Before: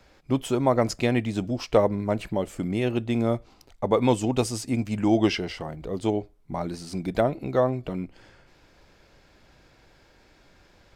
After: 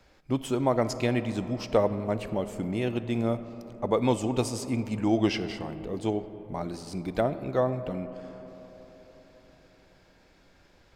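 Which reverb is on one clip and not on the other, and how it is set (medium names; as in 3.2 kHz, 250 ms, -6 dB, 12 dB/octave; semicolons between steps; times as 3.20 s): algorithmic reverb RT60 4.5 s, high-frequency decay 0.3×, pre-delay 10 ms, DRR 12 dB; trim -3.5 dB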